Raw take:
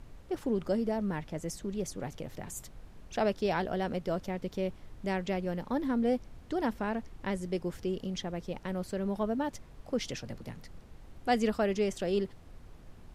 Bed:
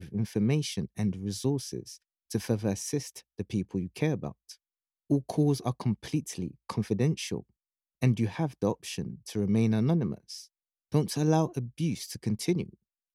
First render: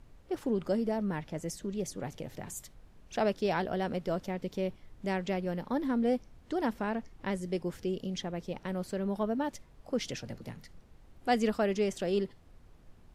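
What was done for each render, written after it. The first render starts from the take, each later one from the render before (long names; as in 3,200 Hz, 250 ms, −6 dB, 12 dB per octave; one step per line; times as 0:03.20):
noise reduction from a noise print 6 dB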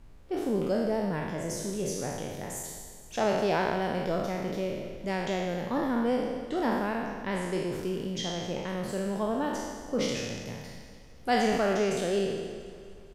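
peak hold with a decay on every bin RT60 1.39 s
repeating echo 231 ms, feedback 59%, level −16.5 dB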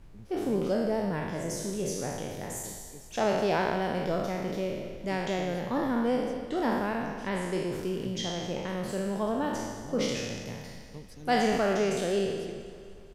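mix in bed −19.5 dB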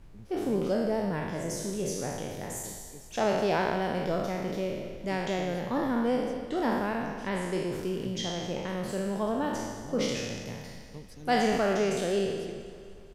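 no processing that can be heard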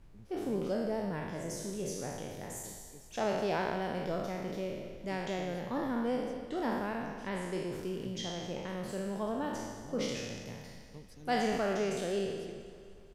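level −5.5 dB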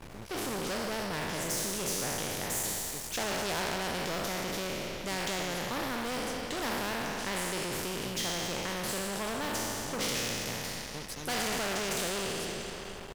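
leveller curve on the samples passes 3
every bin compressed towards the loudest bin 2 to 1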